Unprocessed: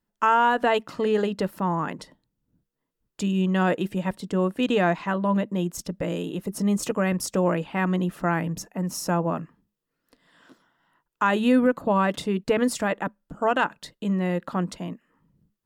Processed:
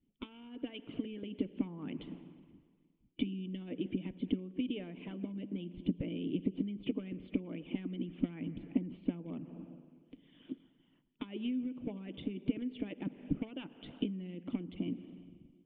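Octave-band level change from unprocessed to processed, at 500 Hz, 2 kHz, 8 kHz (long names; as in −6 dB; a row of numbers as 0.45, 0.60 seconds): −20.5 dB, −25.0 dB, below −40 dB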